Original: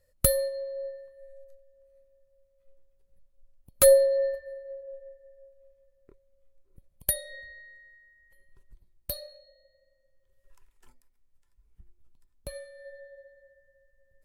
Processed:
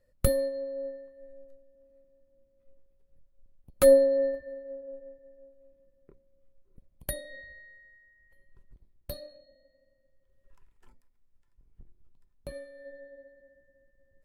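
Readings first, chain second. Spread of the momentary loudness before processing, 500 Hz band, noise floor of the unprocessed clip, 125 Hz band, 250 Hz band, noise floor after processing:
24 LU, 0.0 dB, -69 dBFS, +1.5 dB, n/a, -70 dBFS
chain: octaver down 1 oct, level -3 dB; high shelf 3900 Hz -11.5 dB

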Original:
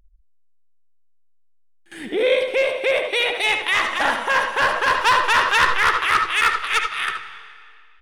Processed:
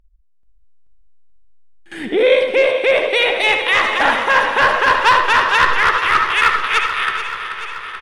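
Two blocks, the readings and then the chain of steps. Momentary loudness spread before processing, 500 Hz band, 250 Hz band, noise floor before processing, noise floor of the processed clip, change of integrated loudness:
8 LU, +6.0 dB, +6.5 dB, -55 dBFS, -51 dBFS, +4.5 dB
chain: on a send: feedback echo 0.433 s, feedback 58%, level -11 dB; on the sum: AGC gain up to 8.5 dB; high shelf 6400 Hz -11 dB

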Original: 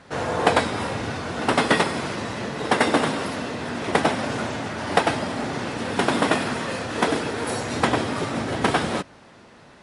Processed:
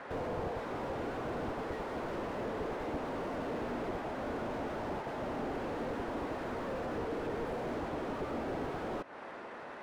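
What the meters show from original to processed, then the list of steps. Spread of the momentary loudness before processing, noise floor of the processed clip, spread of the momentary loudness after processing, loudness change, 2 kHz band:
9 LU, -46 dBFS, 2 LU, -14.5 dB, -18.5 dB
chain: compressor 10:1, threshold -32 dBFS, peak gain reduction 19.5 dB; three-band isolator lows -18 dB, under 300 Hz, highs -18 dB, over 2400 Hz; slew limiter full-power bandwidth 5.1 Hz; gain +6 dB

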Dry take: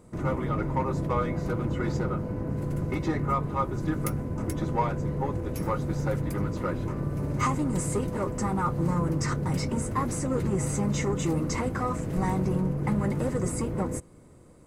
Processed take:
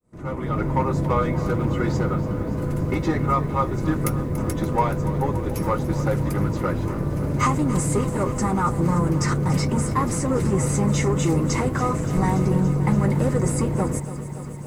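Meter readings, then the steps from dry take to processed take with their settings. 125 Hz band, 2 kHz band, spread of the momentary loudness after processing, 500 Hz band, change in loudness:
+6.5 dB, +5.5 dB, 5 LU, +5.5 dB, +6.0 dB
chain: opening faded in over 0.66 s; lo-fi delay 0.286 s, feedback 80%, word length 9-bit, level -14.5 dB; gain +5.5 dB

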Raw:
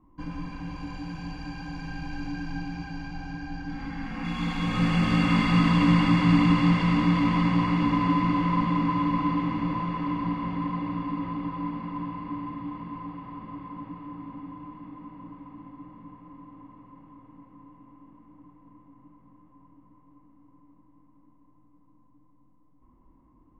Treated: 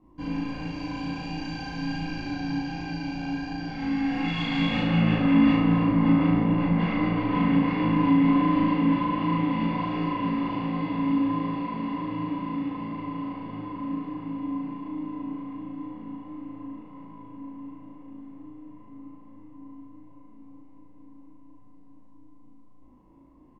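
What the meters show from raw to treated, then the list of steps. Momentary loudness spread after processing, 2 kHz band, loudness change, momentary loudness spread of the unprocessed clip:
20 LU, -1.0 dB, +0.5 dB, 20 LU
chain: overdrive pedal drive 14 dB, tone 4700 Hz, clips at -9 dBFS; EQ curve 110 Hz 0 dB, 640 Hz -3 dB, 1200 Hz -15 dB, 2600 Hz -6 dB; in parallel at -3 dB: compressor, threshold -31 dBFS, peak gain reduction 12.5 dB; on the sum: treble ducked by the level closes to 1100 Hz, closed at -17 dBFS; chorus 1.4 Hz, delay 19 ms, depth 3.1 ms; doubler 43 ms -12.5 dB; flutter echo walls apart 6.2 m, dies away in 0.72 s; gain +1.5 dB

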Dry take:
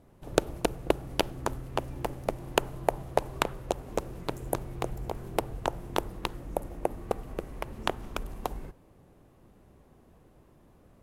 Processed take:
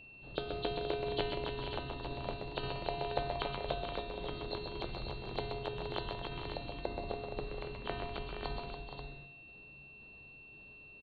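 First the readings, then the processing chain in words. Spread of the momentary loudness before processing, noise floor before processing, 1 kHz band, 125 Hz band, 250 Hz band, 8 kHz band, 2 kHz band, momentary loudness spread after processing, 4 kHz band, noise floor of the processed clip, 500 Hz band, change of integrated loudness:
9 LU, -59 dBFS, -7.0 dB, -5.0 dB, -7.5 dB, under -35 dB, -5.0 dB, 15 LU, -2.5 dB, -55 dBFS, -6.0 dB, -6.0 dB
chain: nonlinear frequency compression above 3000 Hz 4:1; resonator 140 Hz, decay 1.1 s, harmonics odd, mix 80%; transient shaper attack -6 dB, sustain +1 dB; tremolo saw down 1.9 Hz, depth 50%; tapped delay 0.126/0.136/0.284/0.432/0.47/0.535 s -6/-11.5/-7.5/-11.5/-9/-8 dB; whine 2700 Hz -61 dBFS; gain +8.5 dB

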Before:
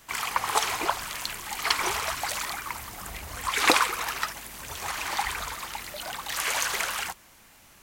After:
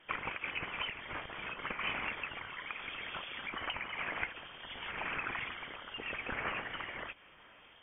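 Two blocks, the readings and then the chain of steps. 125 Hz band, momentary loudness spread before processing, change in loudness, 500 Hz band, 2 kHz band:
-7.0 dB, 12 LU, -11.0 dB, -11.0 dB, -8.0 dB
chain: HPF 110 Hz 24 dB/oct; compressor 4:1, threshold -33 dBFS, peak gain reduction 15.5 dB; rotary speaker horn 6 Hz, later 0.9 Hz, at 0.88; inverted band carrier 3400 Hz; gain +1 dB

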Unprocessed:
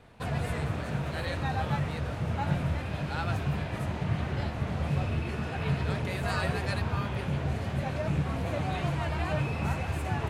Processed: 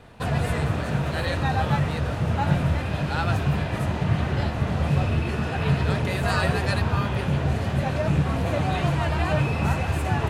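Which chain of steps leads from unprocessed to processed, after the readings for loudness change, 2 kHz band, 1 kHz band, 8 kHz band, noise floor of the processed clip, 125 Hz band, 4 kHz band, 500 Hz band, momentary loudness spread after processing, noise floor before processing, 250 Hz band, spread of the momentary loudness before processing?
+7.0 dB, +6.5 dB, +7.0 dB, +7.0 dB, -29 dBFS, +7.0 dB, +7.0 dB, +7.0 dB, 3 LU, -36 dBFS, +7.0 dB, 3 LU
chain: notch 2200 Hz, Q 21; gain +7 dB

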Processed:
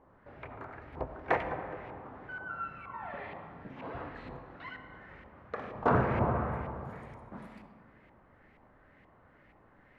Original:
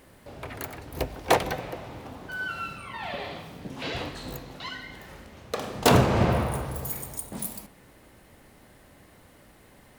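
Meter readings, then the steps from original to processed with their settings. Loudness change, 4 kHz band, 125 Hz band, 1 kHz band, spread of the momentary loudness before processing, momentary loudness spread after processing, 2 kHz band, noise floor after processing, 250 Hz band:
-7.5 dB, -23.0 dB, -8.0 dB, -5.0 dB, 19 LU, 20 LU, -7.0 dB, -62 dBFS, -8.0 dB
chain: LFO low-pass saw up 2.1 Hz 940–2300 Hz; dynamic EQ 3600 Hz, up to -5 dB, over -44 dBFS, Q 0.85; digital reverb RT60 2.4 s, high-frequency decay 0.45×, pre-delay 25 ms, DRR 9 dB; gain -9 dB

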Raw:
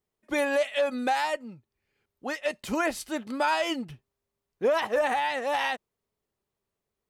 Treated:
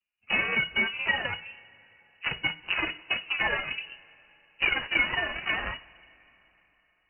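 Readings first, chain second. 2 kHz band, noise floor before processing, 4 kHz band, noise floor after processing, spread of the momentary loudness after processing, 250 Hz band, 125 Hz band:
+5.5 dB, under -85 dBFS, +5.5 dB, -71 dBFS, 11 LU, -9.0 dB, +6.0 dB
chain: inharmonic rescaling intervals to 120%; in parallel at +2 dB: compressor, threshold -39 dBFS, peak gain reduction 16 dB; on the sum: transient shaper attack +7 dB, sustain -1 dB; added harmonics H 6 -11 dB, 7 -25 dB, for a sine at -12.5 dBFS; two-slope reverb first 0.31 s, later 3.6 s, from -20 dB, DRR 10.5 dB; inverted band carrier 2900 Hz; gain -4.5 dB

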